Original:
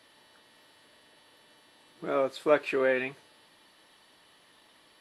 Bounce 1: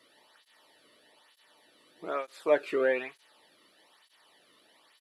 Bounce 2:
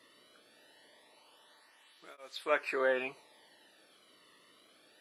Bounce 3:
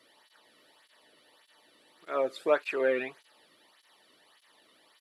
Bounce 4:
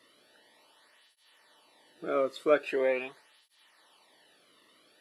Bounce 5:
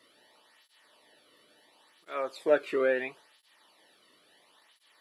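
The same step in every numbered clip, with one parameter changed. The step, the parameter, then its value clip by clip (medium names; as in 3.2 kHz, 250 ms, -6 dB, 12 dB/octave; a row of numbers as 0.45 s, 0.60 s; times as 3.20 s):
cancelling through-zero flanger, nulls at: 1.1 Hz, 0.23 Hz, 1.7 Hz, 0.43 Hz, 0.73 Hz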